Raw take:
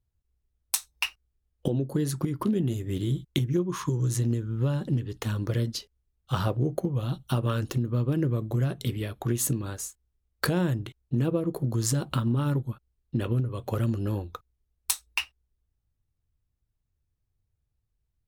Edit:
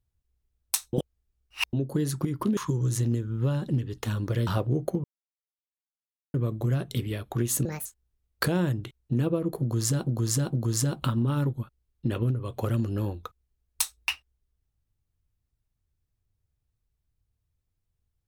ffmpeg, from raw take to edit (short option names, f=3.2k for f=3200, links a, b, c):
-filter_complex "[0:a]asplit=11[a][b][c][d][e][f][g][h][i][j][k];[a]atrim=end=0.932[l];[b]atrim=start=0.928:end=1.732,asetpts=PTS-STARTPTS,areverse[m];[c]atrim=start=1.728:end=2.572[n];[d]atrim=start=3.758:end=5.662[o];[e]atrim=start=6.368:end=6.94,asetpts=PTS-STARTPTS,afade=t=out:st=0.568:d=0.004:c=hsin[p];[f]atrim=start=6.94:end=8.24,asetpts=PTS-STARTPTS,volume=0[q];[g]atrim=start=8.24:end=9.554,asetpts=PTS-STARTPTS,afade=t=in:d=0.004:c=hsin[r];[h]atrim=start=9.55:end=9.87,asetpts=PTS-STARTPTS,asetrate=68355,aresample=44100[s];[i]atrim=start=9.866:end=12.082[t];[j]atrim=start=11.618:end=12.082[u];[k]atrim=start=11.618[v];[l][m]acrossfade=d=0.004:c1=hsin:c2=hsin[w];[w][n]acrossfade=d=0.004:c1=hsin:c2=hsin[x];[x][o]acrossfade=d=0.004:c1=hsin:c2=hsin[y];[p][q][r]concat=n=3:v=0:a=1[z];[y][z]acrossfade=d=0.004:c1=hsin:c2=hsin[aa];[aa][s]acrossfade=d=0.004:c1=hsin:c2=hsin[ab];[ab][t]acrossfade=d=0.004:c1=hsin:c2=hsin[ac];[ac][u]acrossfade=d=0.004:c1=hsin:c2=hsin[ad];[ad][v]acrossfade=d=0.004:c1=hsin:c2=hsin"